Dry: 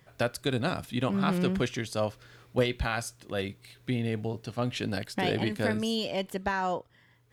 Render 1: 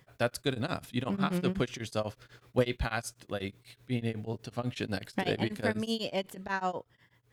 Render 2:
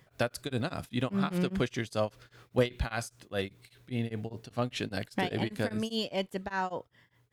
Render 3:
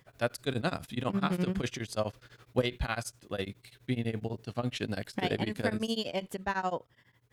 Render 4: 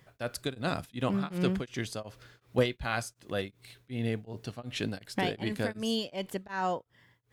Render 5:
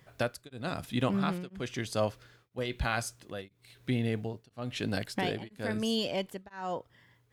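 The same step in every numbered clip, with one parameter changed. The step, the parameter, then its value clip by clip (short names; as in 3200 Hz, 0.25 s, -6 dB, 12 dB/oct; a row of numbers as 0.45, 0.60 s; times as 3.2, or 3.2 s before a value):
beating tremolo, nulls at: 8.1, 5, 12, 2.7, 1 Hz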